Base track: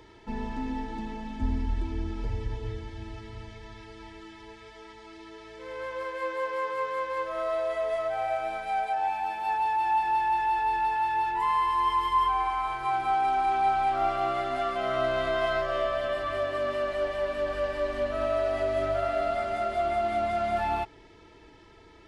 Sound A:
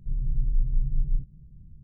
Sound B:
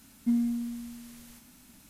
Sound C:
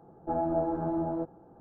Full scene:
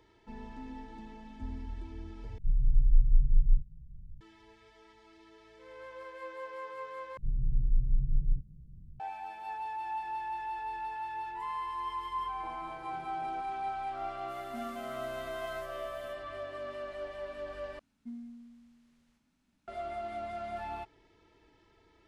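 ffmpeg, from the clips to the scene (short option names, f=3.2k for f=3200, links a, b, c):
-filter_complex "[1:a]asplit=2[a][b];[2:a]asplit=2[c][d];[0:a]volume=-11.5dB[e];[a]aemphasis=mode=reproduction:type=bsi[f];[3:a]acompressor=threshold=-38dB:ratio=6:attack=3.2:release=140:knee=1:detection=peak[g];[c]highpass=f=880:p=1[h];[d]adynamicsmooth=sensitivity=6.5:basefreq=4.8k[i];[e]asplit=4[j][k][l][m];[j]atrim=end=2.384[n];[f]atrim=end=1.83,asetpts=PTS-STARTPTS,volume=-14dB[o];[k]atrim=start=4.206:end=7.174[p];[b]atrim=end=1.83,asetpts=PTS-STARTPTS,volume=-3dB[q];[l]atrim=start=8.996:end=17.794[r];[i]atrim=end=1.89,asetpts=PTS-STARTPTS,volume=-17.5dB[s];[m]atrim=start=19.676[t];[g]atrim=end=1.6,asetpts=PTS-STARTPTS,volume=-9dB,afade=t=in:d=0.004:c=hsin,afade=t=out:st=1.596:d=0.004:c=hsin,adelay=12160[u];[h]atrim=end=1.89,asetpts=PTS-STARTPTS,volume=-6.5dB,afade=t=in:d=0.05,afade=t=out:st=1.84:d=0.05,adelay=14270[v];[n][o]acrossfade=d=0.004:c1=hsin:c2=hsin[w];[w][p]acrossfade=d=0.004:c1=hsin:c2=hsin[x];[x][q]acrossfade=d=0.004:c1=hsin:c2=hsin[y];[y][r]acrossfade=d=0.004:c1=hsin:c2=hsin[z];[z][s]acrossfade=d=0.004:c1=hsin:c2=hsin[aa];[aa][t]acrossfade=d=0.004:c1=hsin:c2=hsin[ab];[ab][u][v]amix=inputs=3:normalize=0"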